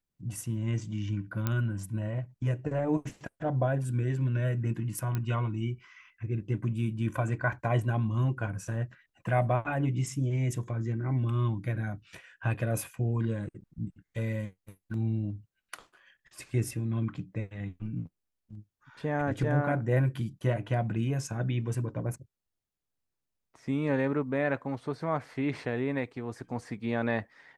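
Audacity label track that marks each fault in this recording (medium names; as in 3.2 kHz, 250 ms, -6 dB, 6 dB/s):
1.470000	1.470000	pop -15 dBFS
5.150000	5.150000	pop -19 dBFS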